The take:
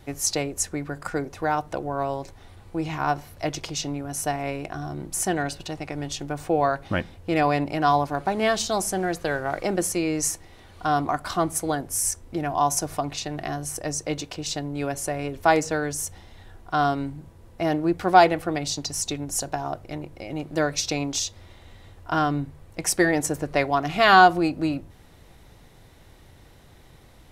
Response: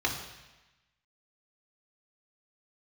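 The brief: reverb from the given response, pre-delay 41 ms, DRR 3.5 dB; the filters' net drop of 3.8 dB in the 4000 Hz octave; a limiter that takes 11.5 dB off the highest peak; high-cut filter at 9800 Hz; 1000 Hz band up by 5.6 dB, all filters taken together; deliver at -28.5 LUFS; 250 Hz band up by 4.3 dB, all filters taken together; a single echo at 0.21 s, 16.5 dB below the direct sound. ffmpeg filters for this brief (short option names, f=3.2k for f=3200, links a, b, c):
-filter_complex "[0:a]lowpass=9.8k,equalizer=f=250:t=o:g=5.5,equalizer=f=1k:t=o:g=8,equalizer=f=4k:t=o:g=-5.5,alimiter=limit=-9.5dB:level=0:latency=1,aecho=1:1:210:0.15,asplit=2[a][b];[1:a]atrim=start_sample=2205,adelay=41[c];[b][c]afir=irnorm=-1:irlink=0,volume=-13dB[d];[a][d]amix=inputs=2:normalize=0,volume=-6.5dB"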